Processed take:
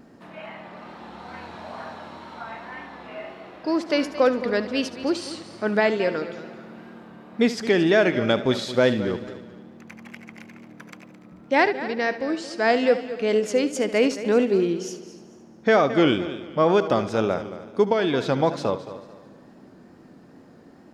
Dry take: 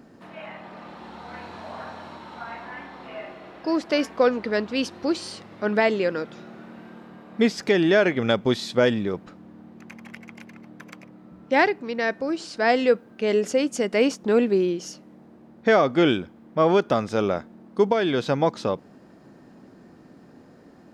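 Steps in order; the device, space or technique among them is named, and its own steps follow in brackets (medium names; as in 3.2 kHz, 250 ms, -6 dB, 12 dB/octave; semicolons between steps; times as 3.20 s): multi-head tape echo (multi-head delay 73 ms, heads first and third, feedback 49%, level -14.5 dB; wow and flutter)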